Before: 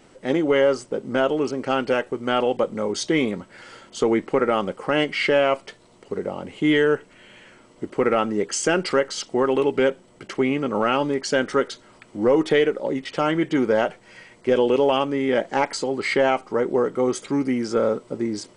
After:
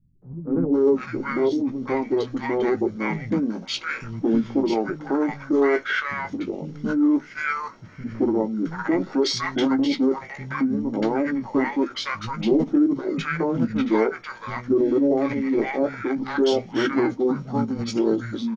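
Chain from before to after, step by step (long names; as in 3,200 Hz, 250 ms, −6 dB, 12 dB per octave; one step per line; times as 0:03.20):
mains-hum notches 50/100/150/200/250 Hz
double-tracking delay 18 ms −8 dB
three-band delay without the direct sound lows, mids, highs 220/730 ms, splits 200/1,200 Hz
formants moved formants −6 semitones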